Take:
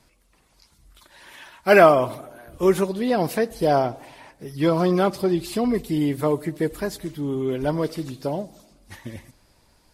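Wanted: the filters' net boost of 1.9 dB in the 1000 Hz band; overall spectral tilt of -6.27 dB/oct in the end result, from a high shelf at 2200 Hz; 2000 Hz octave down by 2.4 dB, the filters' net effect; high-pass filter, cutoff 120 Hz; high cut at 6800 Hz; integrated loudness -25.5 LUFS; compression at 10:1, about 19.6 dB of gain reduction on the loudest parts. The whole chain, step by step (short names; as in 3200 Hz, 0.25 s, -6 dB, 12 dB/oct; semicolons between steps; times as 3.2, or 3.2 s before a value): HPF 120 Hz; LPF 6800 Hz; bell 1000 Hz +4.5 dB; bell 2000 Hz -3.5 dB; high shelf 2200 Hz -3.5 dB; compressor 10:1, threshold -27 dBFS; gain +7.5 dB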